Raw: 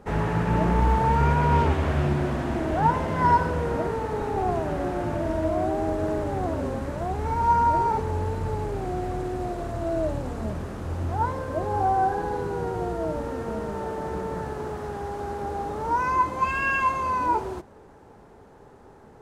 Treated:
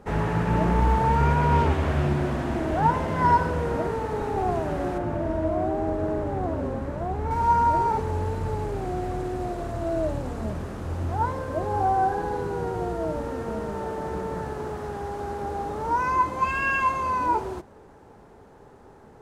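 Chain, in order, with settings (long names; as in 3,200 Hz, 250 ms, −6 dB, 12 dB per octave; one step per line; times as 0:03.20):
0:04.98–0:07.31: high-shelf EQ 2,700 Hz −10 dB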